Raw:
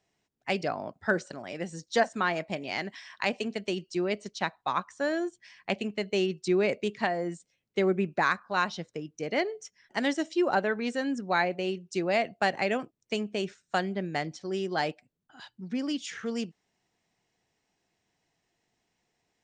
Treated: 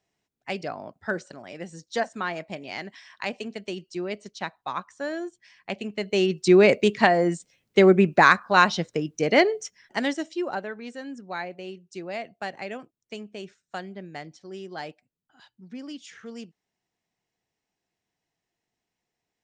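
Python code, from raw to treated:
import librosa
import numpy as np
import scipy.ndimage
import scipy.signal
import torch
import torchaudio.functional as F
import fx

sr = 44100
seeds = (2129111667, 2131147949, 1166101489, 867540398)

y = fx.gain(x, sr, db=fx.line((5.73, -2.0), (6.55, 10.0), (9.55, 10.0), (10.17, 0.0), (10.74, -7.0)))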